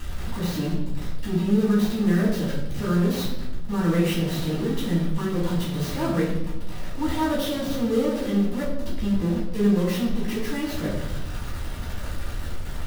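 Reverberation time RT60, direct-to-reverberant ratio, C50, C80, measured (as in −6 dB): 0.90 s, −8.0 dB, 3.5 dB, 6.5 dB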